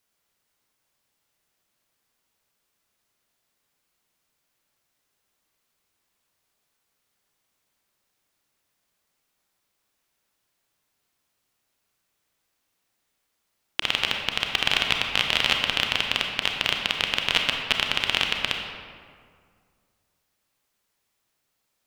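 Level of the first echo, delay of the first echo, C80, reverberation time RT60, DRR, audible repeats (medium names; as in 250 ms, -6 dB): no echo, no echo, 4.5 dB, 2.1 s, 2.0 dB, no echo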